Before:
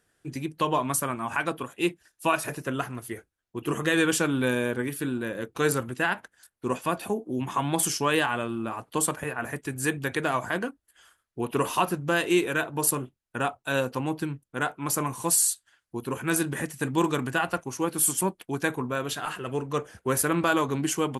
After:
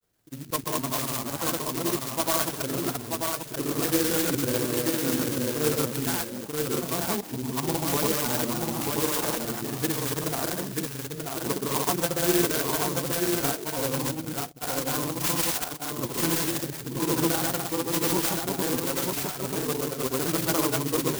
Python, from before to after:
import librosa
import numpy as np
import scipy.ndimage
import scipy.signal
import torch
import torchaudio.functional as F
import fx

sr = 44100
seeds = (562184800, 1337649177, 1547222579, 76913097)

y = fx.reverse_delay(x, sr, ms=146, wet_db=-1)
y = fx.granulator(y, sr, seeds[0], grain_ms=100.0, per_s=20.0, spray_ms=100.0, spread_st=0)
y = y + 10.0 ** (-3.5 / 20.0) * np.pad(y, (int(935 * sr / 1000.0), 0))[:len(y)]
y = fx.clock_jitter(y, sr, seeds[1], jitter_ms=0.15)
y = y * 10.0 ** (-2.0 / 20.0)